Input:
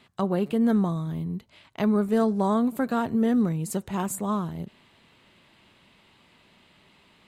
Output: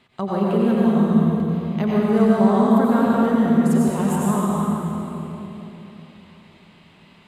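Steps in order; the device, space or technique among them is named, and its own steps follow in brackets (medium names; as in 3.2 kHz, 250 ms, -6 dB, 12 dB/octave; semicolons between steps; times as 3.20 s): swimming-pool hall (reverberation RT60 3.3 s, pre-delay 83 ms, DRR -6 dB; treble shelf 4.7 kHz -5 dB)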